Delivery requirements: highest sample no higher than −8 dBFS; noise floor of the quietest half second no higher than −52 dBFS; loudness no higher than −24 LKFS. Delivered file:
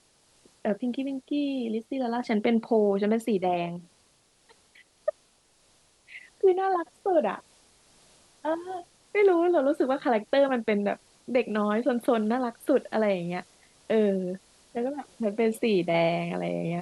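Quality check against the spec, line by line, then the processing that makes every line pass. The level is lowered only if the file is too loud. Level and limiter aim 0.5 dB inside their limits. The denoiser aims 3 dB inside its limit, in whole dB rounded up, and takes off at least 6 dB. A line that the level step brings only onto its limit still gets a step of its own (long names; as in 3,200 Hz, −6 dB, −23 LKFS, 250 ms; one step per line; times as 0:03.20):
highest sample −12.0 dBFS: in spec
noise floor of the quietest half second −64 dBFS: in spec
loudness −27.0 LKFS: in spec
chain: no processing needed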